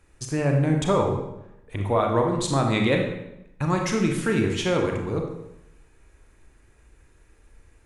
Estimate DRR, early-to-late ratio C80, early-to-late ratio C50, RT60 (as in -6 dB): 2.0 dB, 7.0 dB, 4.5 dB, 0.85 s